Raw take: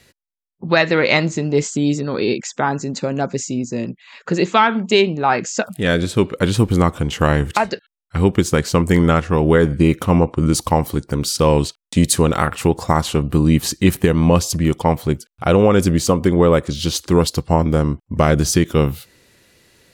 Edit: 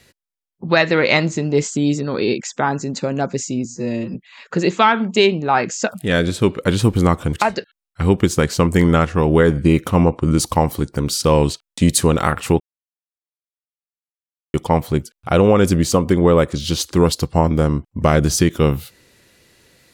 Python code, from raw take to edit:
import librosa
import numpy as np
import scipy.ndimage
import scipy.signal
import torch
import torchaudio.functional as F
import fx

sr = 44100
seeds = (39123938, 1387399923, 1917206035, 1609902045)

y = fx.edit(x, sr, fx.stretch_span(start_s=3.65, length_s=0.25, factor=2.0),
    fx.cut(start_s=7.08, length_s=0.4),
    fx.silence(start_s=12.75, length_s=1.94), tone=tone)